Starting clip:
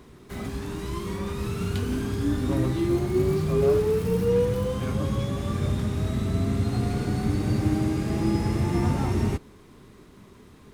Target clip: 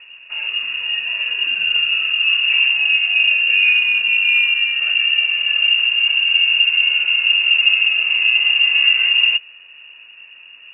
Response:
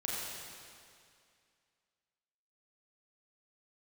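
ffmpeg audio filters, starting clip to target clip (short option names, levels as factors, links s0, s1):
-af "lowshelf=f=280:g=9,bandreject=f=2100:w=15,lowpass=f=2500:t=q:w=0.5098,lowpass=f=2500:t=q:w=0.6013,lowpass=f=2500:t=q:w=0.9,lowpass=f=2500:t=q:w=2.563,afreqshift=-2900,volume=1.33"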